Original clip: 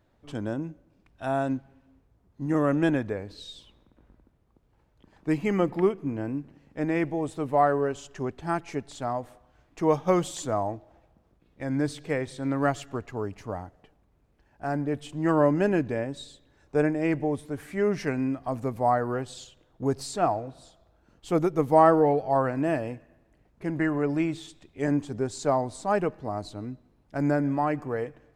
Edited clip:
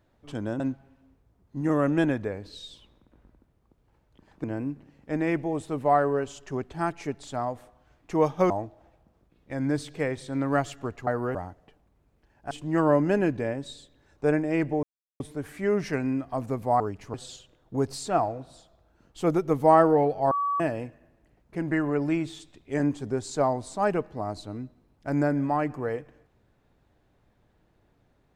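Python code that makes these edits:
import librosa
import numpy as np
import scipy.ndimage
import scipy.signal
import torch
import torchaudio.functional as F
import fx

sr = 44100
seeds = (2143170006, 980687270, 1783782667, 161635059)

y = fx.edit(x, sr, fx.cut(start_s=0.6, length_s=0.85),
    fx.cut(start_s=5.29, length_s=0.83),
    fx.cut(start_s=10.18, length_s=0.42),
    fx.swap(start_s=13.17, length_s=0.34, other_s=18.94, other_length_s=0.28),
    fx.cut(start_s=14.67, length_s=0.35),
    fx.insert_silence(at_s=17.34, length_s=0.37),
    fx.bleep(start_s=22.39, length_s=0.29, hz=1140.0, db=-23.5), tone=tone)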